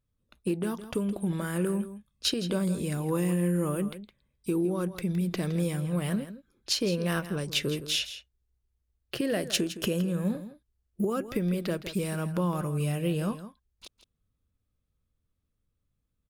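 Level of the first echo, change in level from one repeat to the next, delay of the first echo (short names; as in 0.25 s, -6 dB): -13.0 dB, no steady repeat, 0.164 s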